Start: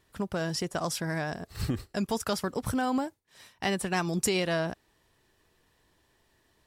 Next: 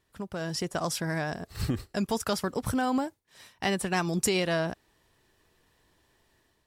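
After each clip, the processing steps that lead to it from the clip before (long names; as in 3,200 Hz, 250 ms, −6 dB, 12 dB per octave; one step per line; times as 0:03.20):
automatic gain control gain up to 6.5 dB
level −5.5 dB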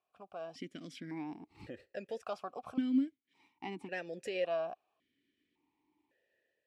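formant filter that steps through the vowels 1.8 Hz
level +1 dB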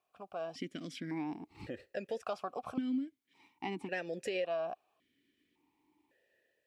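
downward compressor 6 to 1, threshold −36 dBFS, peak gain reduction 10.5 dB
level +4 dB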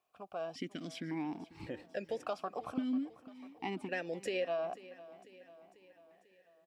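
repeating echo 494 ms, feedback 57%, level −18 dB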